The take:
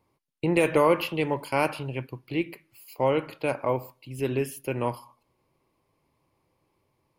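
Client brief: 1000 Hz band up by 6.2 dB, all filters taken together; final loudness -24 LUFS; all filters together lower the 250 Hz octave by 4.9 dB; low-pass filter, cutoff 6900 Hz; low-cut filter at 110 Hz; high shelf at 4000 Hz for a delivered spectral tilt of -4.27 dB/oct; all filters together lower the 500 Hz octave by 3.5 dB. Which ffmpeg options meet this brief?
-af "highpass=110,lowpass=6.9k,equalizer=f=250:t=o:g=-5.5,equalizer=f=500:t=o:g=-5,equalizer=f=1k:t=o:g=9,highshelf=f=4k:g=-7,volume=3dB"

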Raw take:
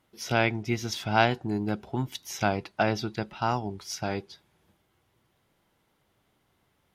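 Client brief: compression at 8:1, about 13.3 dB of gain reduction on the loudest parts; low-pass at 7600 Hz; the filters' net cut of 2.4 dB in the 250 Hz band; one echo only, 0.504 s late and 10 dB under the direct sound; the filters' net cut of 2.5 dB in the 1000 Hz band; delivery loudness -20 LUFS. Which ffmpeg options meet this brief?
-af "lowpass=7.6k,equalizer=f=250:t=o:g=-3,equalizer=f=1k:t=o:g=-3.5,acompressor=threshold=-31dB:ratio=8,aecho=1:1:504:0.316,volume=17dB"

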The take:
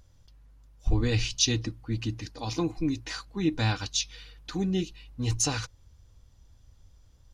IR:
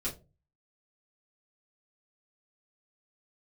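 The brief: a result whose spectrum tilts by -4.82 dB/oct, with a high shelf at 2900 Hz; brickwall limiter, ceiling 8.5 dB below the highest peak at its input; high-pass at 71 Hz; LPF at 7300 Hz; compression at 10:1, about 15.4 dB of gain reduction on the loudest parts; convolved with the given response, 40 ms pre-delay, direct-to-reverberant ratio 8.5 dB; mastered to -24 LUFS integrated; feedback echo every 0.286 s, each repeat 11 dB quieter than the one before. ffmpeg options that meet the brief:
-filter_complex "[0:a]highpass=71,lowpass=7.3k,highshelf=f=2.9k:g=-3.5,acompressor=threshold=-38dB:ratio=10,alimiter=level_in=10.5dB:limit=-24dB:level=0:latency=1,volume=-10.5dB,aecho=1:1:286|572|858:0.282|0.0789|0.0221,asplit=2[a][b];[1:a]atrim=start_sample=2205,adelay=40[c];[b][c]afir=irnorm=-1:irlink=0,volume=-11.5dB[d];[a][d]amix=inputs=2:normalize=0,volume=20dB"

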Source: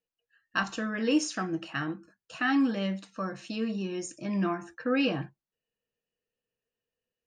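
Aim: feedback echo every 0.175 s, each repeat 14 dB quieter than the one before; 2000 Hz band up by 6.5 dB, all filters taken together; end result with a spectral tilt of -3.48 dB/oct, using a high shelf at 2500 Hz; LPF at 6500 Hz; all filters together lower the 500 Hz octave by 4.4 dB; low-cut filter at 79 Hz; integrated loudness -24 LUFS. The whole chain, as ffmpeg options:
-af "highpass=79,lowpass=6.5k,equalizer=f=500:t=o:g=-6,equalizer=f=2k:t=o:g=6,highshelf=f=2.5k:g=6.5,aecho=1:1:175|350:0.2|0.0399,volume=4.5dB"

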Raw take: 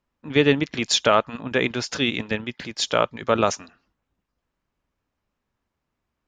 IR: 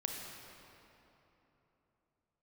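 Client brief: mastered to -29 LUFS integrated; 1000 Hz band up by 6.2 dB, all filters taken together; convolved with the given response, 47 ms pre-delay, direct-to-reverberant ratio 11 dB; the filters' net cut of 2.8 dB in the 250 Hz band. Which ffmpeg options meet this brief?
-filter_complex "[0:a]equalizer=f=250:t=o:g=-4,equalizer=f=1k:t=o:g=8.5,asplit=2[a][b];[1:a]atrim=start_sample=2205,adelay=47[c];[b][c]afir=irnorm=-1:irlink=0,volume=-12.5dB[d];[a][d]amix=inputs=2:normalize=0,volume=-8.5dB"

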